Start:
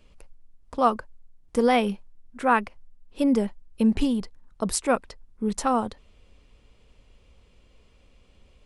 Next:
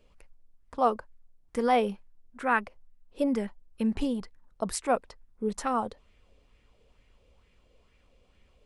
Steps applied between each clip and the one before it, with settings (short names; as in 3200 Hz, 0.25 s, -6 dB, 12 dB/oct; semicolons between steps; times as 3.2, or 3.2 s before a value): LFO bell 2.2 Hz 460–2100 Hz +9 dB; gain -7 dB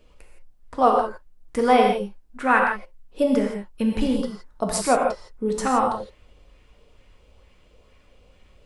non-linear reverb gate 0.19 s flat, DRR 0.5 dB; gain +5.5 dB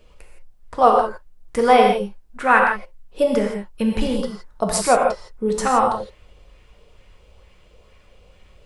bell 270 Hz -9.5 dB 0.28 oct; gain +4 dB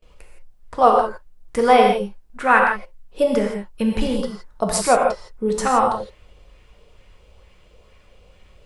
gate with hold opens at -45 dBFS